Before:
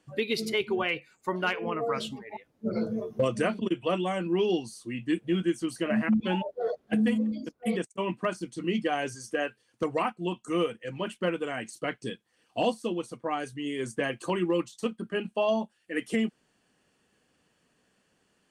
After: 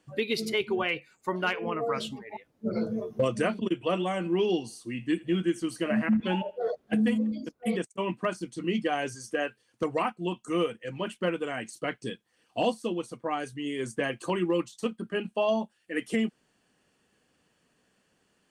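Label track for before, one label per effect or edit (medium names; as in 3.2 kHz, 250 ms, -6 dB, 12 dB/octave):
3.730000	6.580000	thinning echo 81 ms, feedback 35%, level -20 dB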